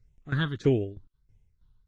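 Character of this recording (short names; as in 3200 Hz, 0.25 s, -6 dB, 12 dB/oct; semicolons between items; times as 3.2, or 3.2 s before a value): phasing stages 6, 1.6 Hz, lowest notch 580–1200 Hz; tremolo saw down 3.1 Hz, depth 85%; AAC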